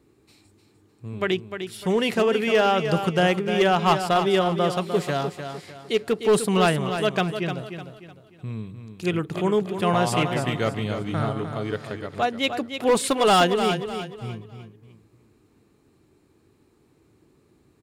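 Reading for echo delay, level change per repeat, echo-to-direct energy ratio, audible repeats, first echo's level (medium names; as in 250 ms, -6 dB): 302 ms, -9.0 dB, -8.0 dB, 3, -8.5 dB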